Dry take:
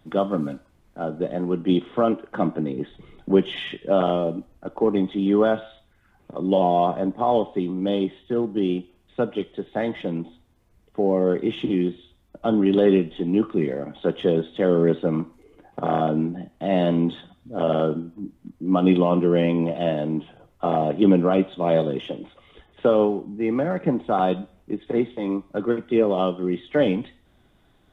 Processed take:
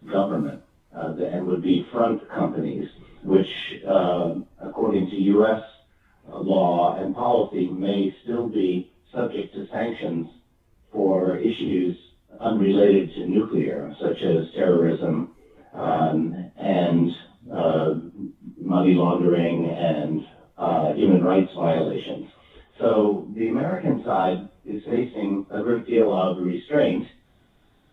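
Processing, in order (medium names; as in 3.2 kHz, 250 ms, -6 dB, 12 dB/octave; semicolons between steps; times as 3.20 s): phase randomisation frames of 100 ms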